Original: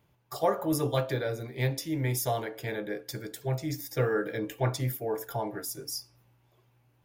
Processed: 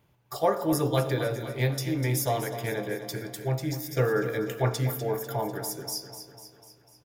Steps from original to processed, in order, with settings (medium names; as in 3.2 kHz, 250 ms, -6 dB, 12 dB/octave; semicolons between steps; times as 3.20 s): feedback delay 248 ms, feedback 57%, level -11 dB; on a send at -17 dB: reverberation RT60 0.60 s, pre-delay 77 ms; on the sum: trim +2 dB